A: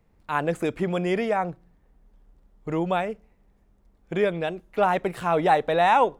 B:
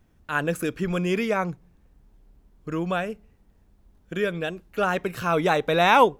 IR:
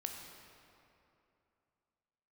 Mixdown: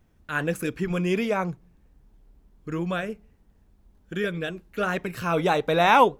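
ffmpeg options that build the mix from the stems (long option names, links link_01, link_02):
-filter_complex "[0:a]volume=-13.5dB[link_01];[1:a]flanger=delay=0.3:depth=5.5:regen=-77:speed=1.4:shape=triangular,volume=3dB[link_02];[link_01][link_02]amix=inputs=2:normalize=0"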